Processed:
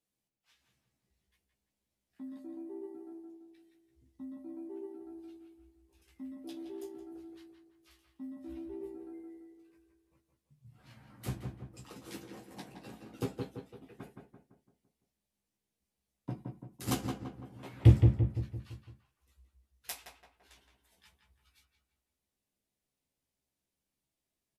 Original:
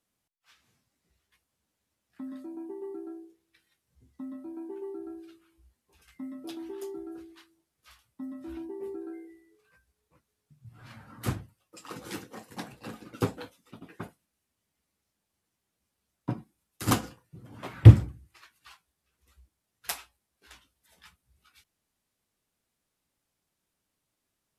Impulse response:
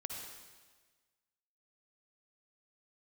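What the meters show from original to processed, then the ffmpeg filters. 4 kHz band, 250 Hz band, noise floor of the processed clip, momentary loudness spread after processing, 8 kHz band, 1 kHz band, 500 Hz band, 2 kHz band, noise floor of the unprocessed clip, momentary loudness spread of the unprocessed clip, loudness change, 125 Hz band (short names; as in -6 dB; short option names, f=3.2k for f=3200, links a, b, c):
-6.5 dB, -5.0 dB, under -85 dBFS, 18 LU, -6.5 dB, -8.5 dB, -5.5 dB, -9.0 dB, -83 dBFS, 16 LU, -7.0 dB, -6.5 dB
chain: -filter_complex "[0:a]equalizer=f=1.3k:t=o:w=0.84:g=-7,asplit=2[a][b];[b]adelay=15,volume=-5dB[c];[a][c]amix=inputs=2:normalize=0,asplit=2[d][e];[e]adelay=169,lowpass=f=1.9k:p=1,volume=-4dB,asplit=2[f][g];[g]adelay=169,lowpass=f=1.9k:p=1,volume=0.5,asplit=2[h][i];[i]adelay=169,lowpass=f=1.9k:p=1,volume=0.5,asplit=2[j][k];[k]adelay=169,lowpass=f=1.9k:p=1,volume=0.5,asplit=2[l][m];[m]adelay=169,lowpass=f=1.9k:p=1,volume=0.5,asplit=2[n][o];[o]adelay=169,lowpass=f=1.9k:p=1,volume=0.5[p];[d][f][h][j][l][n][p]amix=inputs=7:normalize=0,volume=-8dB"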